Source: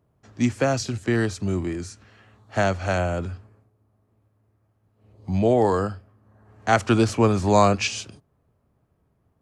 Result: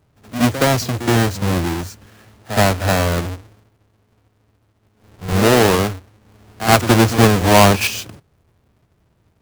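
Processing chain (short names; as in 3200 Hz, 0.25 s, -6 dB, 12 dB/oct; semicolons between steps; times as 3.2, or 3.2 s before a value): half-waves squared off; reverse echo 71 ms -11.5 dB; gain +2.5 dB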